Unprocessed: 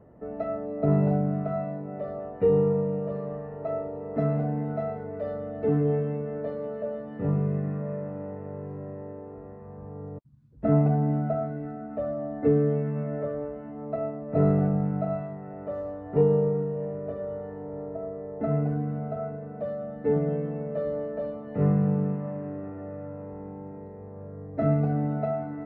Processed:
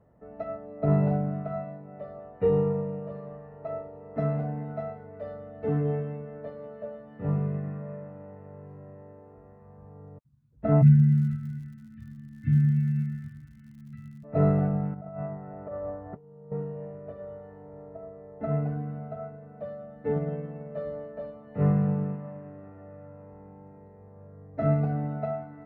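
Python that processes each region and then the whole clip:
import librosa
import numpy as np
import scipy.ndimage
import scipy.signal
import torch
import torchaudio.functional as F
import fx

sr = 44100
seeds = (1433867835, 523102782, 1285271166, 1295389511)

y = fx.cheby1_bandstop(x, sr, low_hz=230.0, high_hz=1600.0, order=4, at=(10.81, 14.23), fade=0.02)
y = fx.peak_eq(y, sr, hz=110.0, db=8.0, octaves=1.6, at=(10.81, 14.23), fade=0.02)
y = fx.dmg_crackle(y, sr, seeds[0], per_s=110.0, level_db=-46.0, at=(10.81, 14.23), fade=0.02)
y = fx.chain(y, sr, fx.lowpass(hz=1700.0, slope=12),
    fx.over_compress(threshold_db=-34.0, ratio=-1.0), at=(14.94, 16.52))
y = fx.peak_eq(y, sr, hz=330.0, db=-6.5, octaves=1.2)
y = fx.upward_expand(y, sr, threshold_db=-38.0, expansion=1.5)
y = y * 10.0 ** (4.5 / 20.0)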